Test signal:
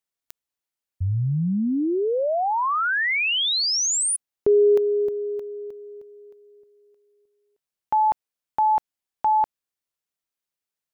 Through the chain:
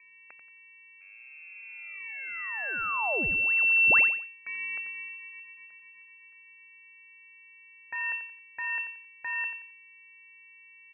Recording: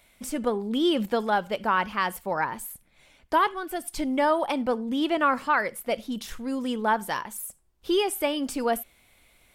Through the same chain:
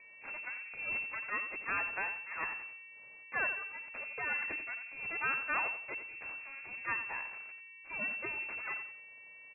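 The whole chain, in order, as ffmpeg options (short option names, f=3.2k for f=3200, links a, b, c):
-af "aderivative,aeval=exprs='val(0)+0.00141*sin(2*PI*420*n/s)':c=same,aresample=16000,aeval=exprs='max(val(0),0)':c=same,aresample=44100,aecho=1:1:89|178|267:0.316|0.0949|0.0285,lowpass=f=2.3k:t=q:w=0.5098,lowpass=f=2.3k:t=q:w=0.6013,lowpass=f=2.3k:t=q:w=0.9,lowpass=f=2.3k:t=q:w=2.563,afreqshift=-2700,volume=8dB"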